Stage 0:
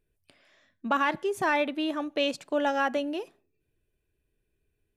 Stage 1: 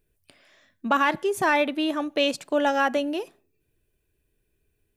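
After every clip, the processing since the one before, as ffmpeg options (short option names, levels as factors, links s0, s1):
-af "highshelf=f=8600:g=7,volume=1.58"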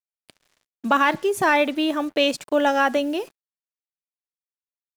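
-af "acrusher=bits=7:mix=0:aa=0.5,volume=1.41"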